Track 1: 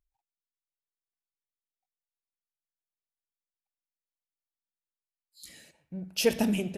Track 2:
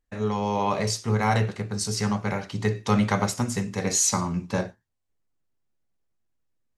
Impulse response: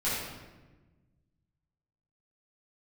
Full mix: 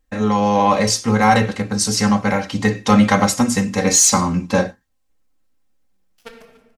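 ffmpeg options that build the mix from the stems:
-filter_complex "[0:a]aeval=exprs='0.251*(cos(1*acos(clip(val(0)/0.251,-1,1)))-cos(1*PI/2))+0.0316*(cos(2*acos(clip(val(0)/0.251,-1,1)))-cos(2*PI/2))+0.1*(cos(3*acos(clip(val(0)/0.251,-1,1)))-cos(3*PI/2))+0.0112*(cos(4*acos(clip(val(0)/0.251,-1,1)))-cos(4*PI/2))+0.00891*(cos(5*acos(clip(val(0)/0.251,-1,1)))-cos(5*PI/2))':c=same,volume=0.126,asplit=3[s0][s1][s2];[s1]volume=0.316[s3];[s2]volume=0.0944[s4];[1:a]aecho=1:1:3.8:0.69,volume=1.26[s5];[2:a]atrim=start_sample=2205[s6];[s3][s6]afir=irnorm=-1:irlink=0[s7];[s4]aecho=0:1:288:1[s8];[s0][s5][s7][s8]amix=inputs=4:normalize=0,acontrast=71"

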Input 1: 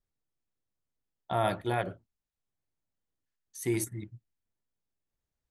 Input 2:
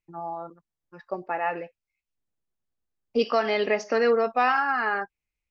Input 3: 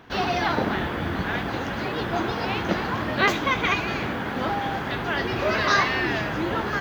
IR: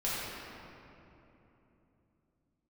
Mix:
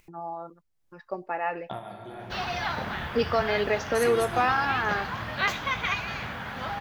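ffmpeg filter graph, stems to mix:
-filter_complex "[0:a]acompressor=threshold=0.0141:ratio=8,adelay=400,volume=1.26,asplit=2[s0][s1];[s1]volume=0.299[s2];[1:a]acompressor=mode=upward:threshold=0.00794:ratio=2.5,volume=0.794,asplit=2[s3][s4];[2:a]equalizer=f=330:w=1.2:g=-14.5,adelay=2200,volume=0.631[s5];[s4]apad=whole_len=260458[s6];[s0][s6]sidechaingate=range=0.224:threshold=0.00178:ratio=16:detection=peak[s7];[3:a]atrim=start_sample=2205[s8];[s2][s8]afir=irnorm=-1:irlink=0[s9];[s7][s3][s5][s9]amix=inputs=4:normalize=0"

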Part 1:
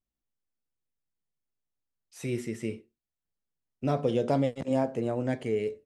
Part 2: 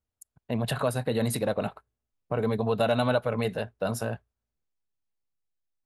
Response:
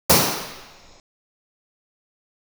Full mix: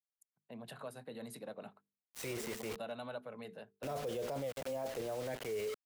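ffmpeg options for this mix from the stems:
-filter_complex "[0:a]lowshelf=f=370:t=q:w=1.5:g=-10,acrusher=bits=6:mix=0:aa=0.000001,volume=1.06[s0];[1:a]highpass=f=150:w=0.5412,highpass=f=150:w=1.3066,bandreject=f=50:t=h:w=6,bandreject=f=100:t=h:w=6,bandreject=f=150:t=h:w=6,bandreject=f=200:t=h:w=6,bandreject=f=250:t=h:w=6,bandreject=f=300:t=h:w=6,bandreject=f=350:t=h:w=6,bandreject=f=400:t=h:w=6,bandreject=f=450:t=h:w=6,volume=0.119[s1];[s0][s1]amix=inputs=2:normalize=0,acrossover=split=240[s2][s3];[s3]acompressor=threshold=0.0224:ratio=2[s4];[s2][s4]amix=inputs=2:normalize=0,alimiter=level_in=2.37:limit=0.0631:level=0:latency=1:release=12,volume=0.422"

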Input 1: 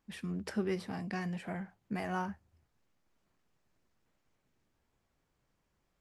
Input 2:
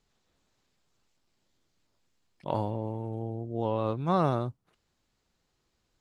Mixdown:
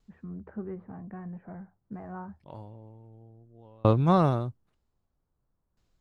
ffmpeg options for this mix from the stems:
-filter_complex "[0:a]lowpass=f=1400:w=0.5412,lowpass=f=1400:w=1.3066,volume=0.531,asplit=2[s0][s1];[1:a]dynaudnorm=f=320:g=9:m=3.98,aeval=exprs='val(0)*pow(10,-36*if(lt(mod(0.52*n/s,1),2*abs(0.52)/1000),1-mod(0.52*n/s,1)/(2*abs(0.52)/1000),(mod(0.52*n/s,1)-2*abs(0.52)/1000)/(1-2*abs(0.52)/1000))/20)':c=same,volume=0.794[s2];[s1]apad=whole_len=264822[s3];[s2][s3]sidechaincompress=threshold=0.00224:ratio=8:attack=34:release=1280[s4];[s0][s4]amix=inputs=2:normalize=0,lowshelf=f=120:g=10.5"

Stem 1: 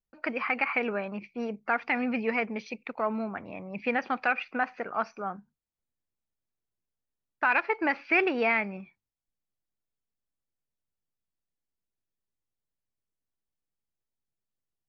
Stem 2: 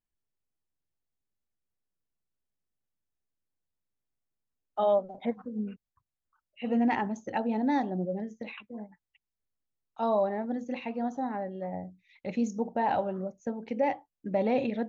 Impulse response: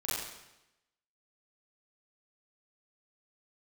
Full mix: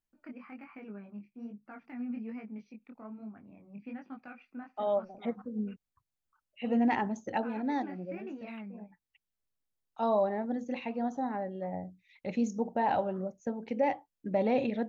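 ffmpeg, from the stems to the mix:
-filter_complex "[0:a]deesser=1,equalizer=f=125:t=o:w=1:g=7,equalizer=f=250:t=o:w=1:g=10,equalizer=f=500:t=o:w=1:g=-5,equalizer=f=1000:t=o:w=1:g=-3,equalizer=f=2000:t=o:w=1:g=-5,equalizer=f=4000:t=o:w=1:g=-8,flanger=delay=18.5:depth=6.4:speed=1.2,volume=0.188,asplit=2[s0][s1];[1:a]volume=0.891[s2];[s1]apad=whole_len=656462[s3];[s2][s3]sidechaincompress=threshold=0.00355:ratio=8:attack=40:release=640[s4];[s0][s4]amix=inputs=2:normalize=0"

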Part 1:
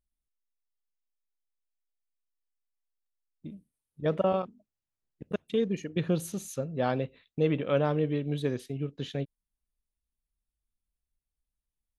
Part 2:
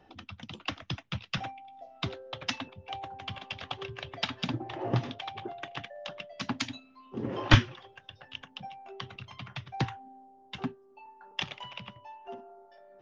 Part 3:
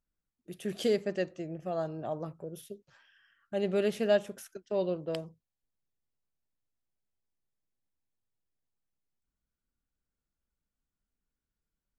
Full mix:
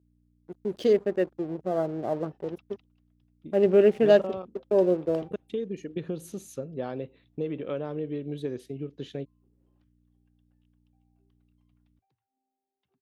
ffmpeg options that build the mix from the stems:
-filter_complex "[0:a]acompressor=threshold=0.0447:ratio=6,aeval=exprs='val(0)+0.001*(sin(2*PI*60*n/s)+sin(2*PI*2*60*n/s)/2+sin(2*PI*3*60*n/s)/3+sin(2*PI*4*60*n/s)/4+sin(2*PI*5*60*n/s)/5)':c=same,volume=0.531[s0];[1:a]acompressor=threshold=0.0141:ratio=6,acrossover=split=140[s1][s2];[s2]acompressor=threshold=0.00316:ratio=2.5[s3];[s1][s3]amix=inputs=2:normalize=0,adelay=2300,volume=0.473[s4];[2:a]afwtdn=0.00501,dynaudnorm=f=210:g=13:m=1.68,aeval=exprs='sgn(val(0))*max(abs(val(0))-0.00422,0)':c=same,volume=0.944,asplit=2[s5][s6];[s6]apad=whole_len=675370[s7];[s4][s7]sidechaingate=range=0.0398:threshold=0.00631:ratio=16:detection=peak[s8];[s0][s8][s5]amix=inputs=3:normalize=0,highpass=46,equalizer=f=370:t=o:w=1.2:g=8"

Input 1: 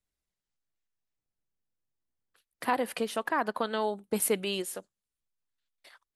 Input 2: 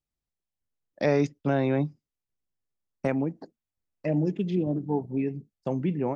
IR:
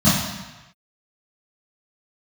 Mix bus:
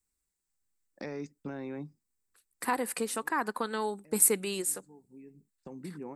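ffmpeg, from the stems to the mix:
-filter_complex "[0:a]highshelf=f=10000:g=8.5,volume=0.944,asplit=2[s0][s1];[1:a]acompressor=threshold=0.0141:ratio=2.5,volume=0.794[s2];[s1]apad=whole_len=271549[s3];[s2][s3]sidechaincompress=threshold=0.00282:ratio=4:attack=16:release=858[s4];[s0][s4]amix=inputs=2:normalize=0,equalizer=f=125:t=o:w=0.33:g=-11,equalizer=f=630:t=o:w=0.33:g=-11,equalizer=f=3150:t=o:w=0.33:g=-9,equalizer=f=8000:t=o:w=0.33:g=11"

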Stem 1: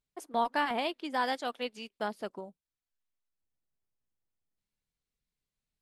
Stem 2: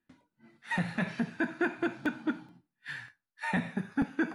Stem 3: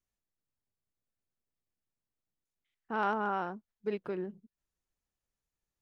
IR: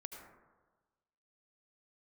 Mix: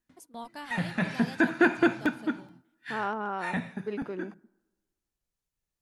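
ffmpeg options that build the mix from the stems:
-filter_complex "[0:a]bass=f=250:g=12,treble=f=4000:g=12,volume=0.211[s0];[1:a]dynaudnorm=f=320:g=7:m=4.47,volume=0.596,afade=t=out:st=1.91:d=0.22:silence=0.446684,asplit=2[s1][s2];[s2]volume=0.1[s3];[2:a]volume=0.891,asplit=2[s4][s5];[s5]volume=0.0708[s6];[3:a]atrim=start_sample=2205[s7];[s3][s6]amix=inputs=2:normalize=0[s8];[s8][s7]afir=irnorm=-1:irlink=0[s9];[s0][s1][s4][s9]amix=inputs=4:normalize=0"

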